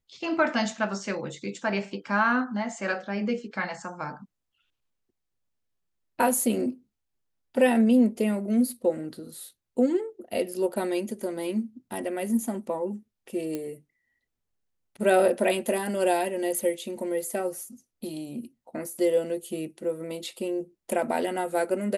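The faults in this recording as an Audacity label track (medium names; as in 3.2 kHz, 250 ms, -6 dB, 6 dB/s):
13.550000	13.550000	pop -18 dBFS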